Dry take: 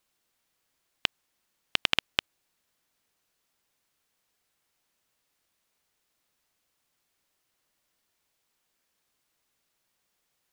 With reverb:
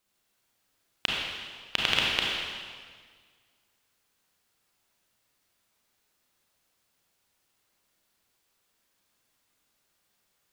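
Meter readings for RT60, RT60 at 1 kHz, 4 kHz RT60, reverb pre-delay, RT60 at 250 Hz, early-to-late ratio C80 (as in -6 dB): 1.7 s, 1.7 s, 1.6 s, 29 ms, 1.8 s, 0.5 dB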